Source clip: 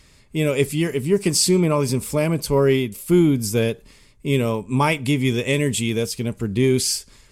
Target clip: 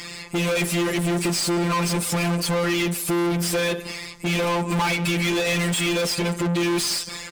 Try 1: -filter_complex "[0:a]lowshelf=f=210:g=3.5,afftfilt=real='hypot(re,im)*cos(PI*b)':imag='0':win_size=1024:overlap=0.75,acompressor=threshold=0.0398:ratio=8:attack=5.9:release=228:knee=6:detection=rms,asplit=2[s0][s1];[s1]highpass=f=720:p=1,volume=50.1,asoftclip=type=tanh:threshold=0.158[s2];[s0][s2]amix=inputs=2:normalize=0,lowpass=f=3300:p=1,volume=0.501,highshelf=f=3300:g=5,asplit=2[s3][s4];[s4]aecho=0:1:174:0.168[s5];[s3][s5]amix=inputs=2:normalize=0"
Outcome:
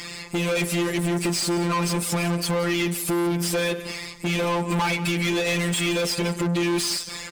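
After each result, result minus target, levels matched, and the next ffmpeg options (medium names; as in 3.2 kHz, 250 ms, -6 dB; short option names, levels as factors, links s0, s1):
compression: peak gain reduction +6.5 dB; echo-to-direct +6 dB
-filter_complex "[0:a]lowshelf=f=210:g=3.5,afftfilt=real='hypot(re,im)*cos(PI*b)':imag='0':win_size=1024:overlap=0.75,acompressor=threshold=0.0944:ratio=8:attack=5.9:release=228:knee=6:detection=rms,asplit=2[s0][s1];[s1]highpass=f=720:p=1,volume=50.1,asoftclip=type=tanh:threshold=0.158[s2];[s0][s2]amix=inputs=2:normalize=0,lowpass=f=3300:p=1,volume=0.501,highshelf=f=3300:g=5,asplit=2[s3][s4];[s4]aecho=0:1:174:0.168[s5];[s3][s5]amix=inputs=2:normalize=0"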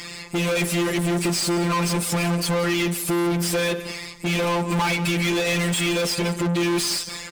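echo-to-direct +6 dB
-filter_complex "[0:a]lowshelf=f=210:g=3.5,afftfilt=real='hypot(re,im)*cos(PI*b)':imag='0':win_size=1024:overlap=0.75,acompressor=threshold=0.0944:ratio=8:attack=5.9:release=228:knee=6:detection=rms,asplit=2[s0][s1];[s1]highpass=f=720:p=1,volume=50.1,asoftclip=type=tanh:threshold=0.158[s2];[s0][s2]amix=inputs=2:normalize=0,lowpass=f=3300:p=1,volume=0.501,highshelf=f=3300:g=5,asplit=2[s3][s4];[s4]aecho=0:1:174:0.0841[s5];[s3][s5]amix=inputs=2:normalize=0"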